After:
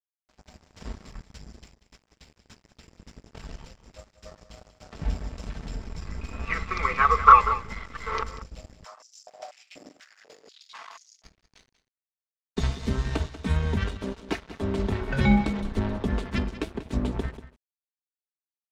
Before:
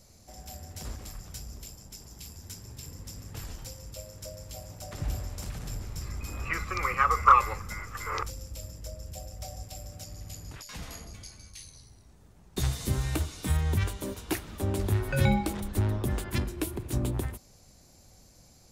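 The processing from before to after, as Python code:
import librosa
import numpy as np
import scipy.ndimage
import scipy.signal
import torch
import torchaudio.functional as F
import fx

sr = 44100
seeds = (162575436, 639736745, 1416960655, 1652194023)

y = x + 0.68 * np.pad(x, (int(4.5 * sr / 1000.0), 0))[:len(x)]
y = np.sign(y) * np.maximum(np.abs(y) - 10.0 ** (-40.5 / 20.0), 0.0)
y = fx.air_absorb(y, sr, metres=150.0)
y = y + 10.0 ** (-14.0 / 20.0) * np.pad(y, (int(189 * sr / 1000.0), 0))[:len(y)]
y = fx.filter_held_highpass(y, sr, hz=4.1, low_hz=290.0, high_hz=5900.0, at=(8.83, 11.23), fade=0.02)
y = y * 10.0 ** (4.5 / 20.0)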